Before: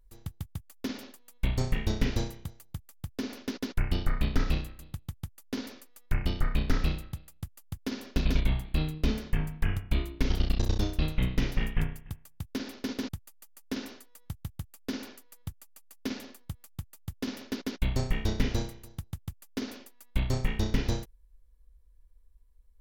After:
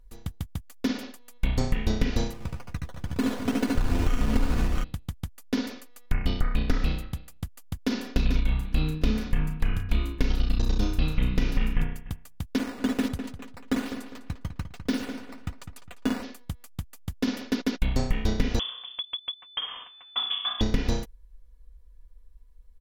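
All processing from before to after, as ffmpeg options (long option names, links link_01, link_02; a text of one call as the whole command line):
ffmpeg -i in.wav -filter_complex "[0:a]asettb=1/sr,asplit=3[link_01][link_02][link_03];[link_01]atrim=end=2.334[link_04];[link_02]atrim=start=2.33:end=4.84,asetpts=PTS-STARTPTS,afade=type=in:duration=0.004:curve=qsin,afade=type=out:start_time=2.506:duration=0.004:curve=qsin,acrusher=samples=14:mix=1:aa=0.000001:lfo=1:lforange=8.4:lforate=2.1,aecho=1:1:73|87|228|490|649|708:0.668|0.422|0.266|0.251|0.251|0.473,atrim=end_sample=110691[link_05];[link_03]atrim=start=4.836[link_06];[link_04][link_05]acrossfade=duration=0.004:curve1=hsin:curve2=qsin[link_07];[link_07][link_06]acrossfade=duration=0.004:curve1=qsin:curve2=hsin,asettb=1/sr,asplit=3[link_08][link_09][link_10];[link_08]atrim=end=7.874[link_11];[link_09]atrim=start=7.87:end=11.83,asetpts=PTS-STARTPTS,afade=type=in:duration=0.004:curve=qsin,afade=type=out:start_time=3.956:duration=0.004:curve=qsin,asplit=2[link_12][link_13];[link_13]adelay=33,volume=-9.5dB[link_14];[link_12][link_14]amix=inputs=2:normalize=0,atrim=end_sample=174636,bandreject=frequency=91.55:width_type=h:width=4,bandreject=frequency=183.1:width_type=h:width=4,bandreject=frequency=274.65:width_type=h:width=4,bandreject=frequency=366.2:width_type=h:width=4,bandreject=frequency=457.75:width_type=h:width=4,bandreject=frequency=549.3:width_type=h:width=4,bandreject=frequency=640.85:width_type=h:width=4,bandreject=frequency=732.4:width_type=h:width=4,bandreject=frequency=823.95:width_type=h:width=4,bandreject=frequency=915.5:width_type=h:width=4,bandreject=frequency=1007.05:width_type=h:width=4,bandreject=frequency=1098.6:width_type=h:width=4,bandreject=frequency=1190.15:width_type=h:width=4,bandreject=frequency=1281.7:width_type=h:width=4,bandreject=frequency=1373.25:width_type=h:width=4,bandreject=frequency=1464.8:width_type=h:width=4,bandreject=frequency=1556.35:width_type=h:width=4,bandreject=frequency=1647.9:width_type=h:width=4,bandreject=frequency=1739.45:width_type=h:width=4,bandreject=frequency=1831:width_type=h:width=4,bandreject=frequency=1922.55:width_type=h:width=4,bandreject=frequency=2014.1:width_type=h:width=4,bandreject=frequency=2105.65:width_type=h:width=4,bandreject=frequency=2197.2:width_type=h:width=4,bandreject=frequency=2288.75:width_type=h:width=4,bandreject=frequency=2380.3:width_type=h:width=4,bandreject=frequency=2471.85:width_type=h:width=4,bandreject=frequency=2563.4:width_type=h:width=4,aecho=1:1:854:0.0631,atrim=end_sample=174636[link_15];[link_10]atrim=start=11.826[link_16];[link_11][link_15]acrossfade=duration=0.004:curve1=hsin:curve2=qsin[link_17];[link_17][link_16]acrossfade=duration=0.004:curve1=qsin:curve2=hsin,asettb=1/sr,asplit=3[link_18][link_19][link_20];[link_18]atrim=end=12.584[link_21];[link_19]atrim=start=12.58:end=16.23,asetpts=PTS-STARTPTS,afade=type=in:duration=0.004:curve=qsin,afade=type=out:start_time=3.646:duration=0.004:curve=qsin,acrusher=samples=8:mix=1:aa=0.000001:lfo=1:lforange=12.8:lforate=1.2,asplit=2[link_22][link_23];[link_23]adelay=203,lowpass=frequency=3700:poles=1,volume=-9dB,asplit=2[link_24][link_25];[link_25]adelay=203,lowpass=frequency=3700:poles=1,volume=0.33,asplit=2[link_26][link_27];[link_27]adelay=203,lowpass=frequency=3700:poles=1,volume=0.33,asplit=2[link_28][link_29];[link_29]adelay=203,lowpass=frequency=3700:poles=1,volume=0.33[link_30];[link_22][link_24][link_26][link_28][link_30]amix=inputs=5:normalize=0,atrim=end_sample=160965[link_31];[link_20]atrim=start=16.226[link_32];[link_21][link_31]acrossfade=duration=0.004:curve1=hsin:curve2=qsin[link_33];[link_33][link_32]acrossfade=duration=0.004:curve1=qsin:curve2=hsin,asettb=1/sr,asplit=3[link_34][link_35][link_36];[link_34]atrim=end=18.594[link_37];[link_35]atrim=start=18.59:end=20.61,asetpts=PTS-STARTPTS,afade=type=in:duration=0.004:curve=qsin,afade=type=out:start_time=2.016:duration=0.004:curve=qsin,equalizer=frequency=2400:width_type=o:width=0.24:gain=14,acrossover=split=550|2000[link_38][link_39][link_40];[link_38]acompressor=threshold=-35dB:ratio=4[link_41];[link_39]acompressor=threshold=-50dB:ratio=4[link_42];[link_40]acompressor=threshold=-47dB:ratio=4[link_43];[link_41][link_42][link_43]amix=inputs=3:normalize=0,lowpass=frequency=3000:width_type=q:width=0.5098,lowpass=frequency=3000:width_type=q:width=0.6013,lowpass=frequency=3000:width_type=q:width=0.9,lowpass=frequency=3000:width_type=q:width=2.563,afreqshift=-3500[link_44];[link_36]atrim=start=20.606[link_45];[link_37][link_44]acrossfade=duration=0.004:curve1=hsin:curve2=qsin[link_46];[link_46][link_45]acrossfade=duration=0.004:curve1=qsin:curve2=hsin,highshelf=frequency=9100:gain=-7,aecho=1:1:4.1:0.37,acompressor=threshold=-24dB:ratio=6,volume=6dB" out.wav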